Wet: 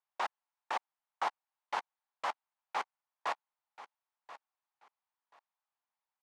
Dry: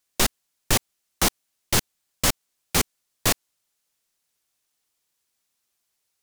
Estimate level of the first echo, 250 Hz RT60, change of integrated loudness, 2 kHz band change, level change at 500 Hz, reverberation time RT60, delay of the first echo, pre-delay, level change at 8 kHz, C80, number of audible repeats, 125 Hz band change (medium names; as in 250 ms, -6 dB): -16.0 dB, no reverb, -15.5 dB, -12.5 dB, -14.0 dB, no reverb, 1033 ms, no reverb, -33.0 dB, no reverb, 2, under -40 dB